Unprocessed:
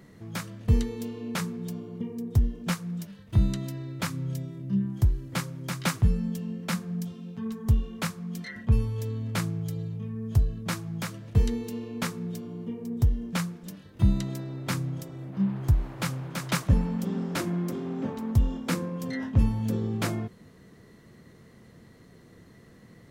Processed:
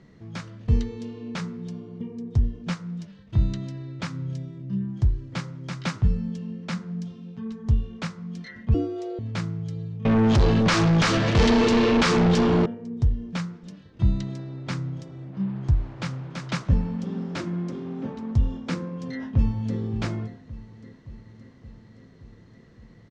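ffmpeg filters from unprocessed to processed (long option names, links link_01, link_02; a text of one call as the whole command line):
ffmpeg -i in.wav -filter_complex "[0:a]asettb=1/sr,asplit=3[link_01][link_02][link_03];[link_01]atrim=end=8.744[link_04];[link_02]atrim=start=8.74:end=9.19,asetpts=PTS-STARTPTS,afade=type=in:duration=0.004:curve=qsin,afade=type=out:start_time=0.446:duration=0.004:curve=qsin,afreqshift=250[link_05];[link_03]atrim=start=9.186[link_06];[link_04][link_05]acrossfade=duration=0.004:curve1=hsin:curve2=qsin[link_07];[link_07][link_06]acrossfade=duration=0.004:curve1=qsin:curve2=hsin,asettb=1/sr,asplit=3[link_08][link_09][link_10];[link_08]atrim=end=10.054[link_11];[link_09]atrim=start=10.05:end=12.66,asetpts=PTS-STARTPTS,afade=type=in:duration=0.004:curve=qsin,afade=type=out:start_time=2.606:duration=0.004:curve=qsin,asplit=2[link_12][link_13];[link_13]highpass=frequency=720:poles=1,volume=42dB,asoftclip=type=tanh:threshold=-10.5dB[link_14];[link_12][link_14]amix=inputs=2:normalize=0,lowpass=frequency=5200:poles=1,volume=-6dB[link_15];[link_10]atrim=start=12.656[link_16];[link_11][link_15]acrossfade=duration=0.004:curve1=hsin:curve2=qsin[link_17];[link_17][link_16]acrossfade=duration=0.004:curve1=qsin:curve2=hsin,asplit=2[link_18][link_19];[link_19]afade=type=in:start_time=19.12:duration=0.01,afade=type=out:start_time=19.79:duration=0.01,aecho=0:1:570|1140|1710|2280|2850|3420|3990|4560:0.16788|0.117516|0.0822614|0.057583|0.0403081|0.0282157|0.019751|0.0138257[link_20];[link_18][link_20]amix=inputs=2:normalize=0,lowpass=frequency=6200:width=0.5412,lowpass=frequency=6200:width=1.3066,lowshelf=frequency=210:gain=4,bandreject=frequency=100.1:width_type=h:width=4,bandreject=frequency=200.2:width_type=h:width=4,bandreject=frequency=300.3:width_type=h:width=4,bandreject=frequency=400.4:width_type=h:width=4,bandreject=frequency=500.5:width_type=h:width=4,bandreject=frequency=600.6:width_type=h:width=4,bandreject=frequency=700.7:width_type=h:width=4,bandreject=frequency=800.8:width_type=h:width=4,bandreject=frequency=900.9:width_type=h:width=4,bandreject=frequency=1001:width_type=h:width=4,bandreject=frequency=1101.1:width_type=h:width=4,bandreject=frequency=1201.2:width_type=h:width=4,bandreject=frequency=1301.3:width_type=h:width=4,bandreject=frequency=1401.4:width_type=h:width=4,bandreject=frequency=1501.5:width_type=h:width=4,bandreject=frequency=1601.6:width_type=h:width=4,bandreject=frequency=1701.7:width_type=h:width=4,bandreject=frequency=1801.8:width_type=h:width=4,bandreject=frequency=1901.9:width_type=h:width=4,bandreject=frequency=2002:width_type=h:width=4,bandreject=frequency=2102.1:width_type=h:width=4,volume=-2dB" out.wav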